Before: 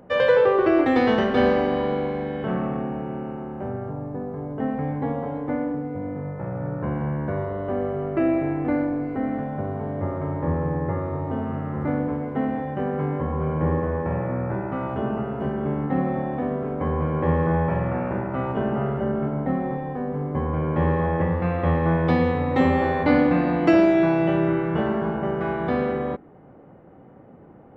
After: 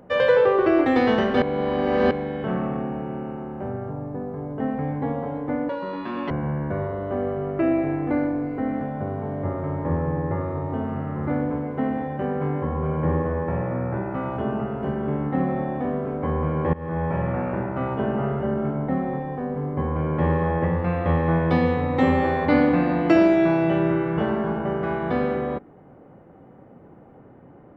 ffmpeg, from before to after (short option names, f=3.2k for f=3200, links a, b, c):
-filter_complex "[0:a]asplit=6[a][b][c][d][e][f];[a]atrim=end=1.422[g];[b]atrim=start=1.418:end=2.112,asetpts=PTS-STARTPTS,areverse[h];[c]atrim=start=2.108:end=5.694[i];[d]atrim=start=5.69:end=6.88,asetpts=PTS-STARTPTS,asetrate=85554,aresample=44100,atrim=end_sample=27051,asetpts=PTS-STARTPTS[j];[e]atrim=start=6.876:end=17.31,asetpts=PTS-STARTPTS,afade=t=out:st=10.43:d=0.004:c=hsin:silence=0.0794328[k];[f]atrim=start=17.31,asetpts=PTS-STARTPTS,afade=t=in:d=0.64:c=qsin:silence=0.0794328[l];[g][h]acrossfade=d=0.004:c1=hsin:c2=hsin[m];[m][i]acrossfade=d=0.004:c1=hsin:c2=hsin[n];[n][j]acrossfade=d=0.004:c1=hsin:c2=hsin[o];[k][l]concat=n=2:v=0:a=1[p];[o][p]acrossfade=d=0.004:c1=hsin:c2=hsin"